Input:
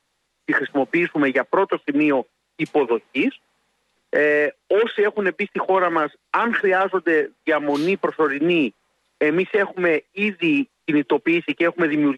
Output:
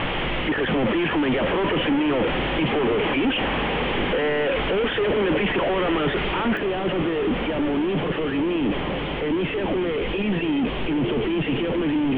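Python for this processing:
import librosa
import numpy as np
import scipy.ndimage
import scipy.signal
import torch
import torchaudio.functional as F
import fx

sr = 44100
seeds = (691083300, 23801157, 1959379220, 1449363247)

y = np.sign(x) * np.sqrt(np.mean(np.square(x)))
y = scipy.signal.sosfilt(scipy.signal.cheby1(6, 1.0, 3200.0, 'lowpass', fs=sr, output='sos'), y)
y = fx.peak_eq(y, sr, hz=1500.0, db=fx.steps((0.0, -8.0), (6.57, -14.5)), octaves=2.8)
y = fx.echo_diffused(y, sr, ms=1126, feedback_pct=47, wet_db=-11)
y = y * 10.0 ** (4.0 / 20.0)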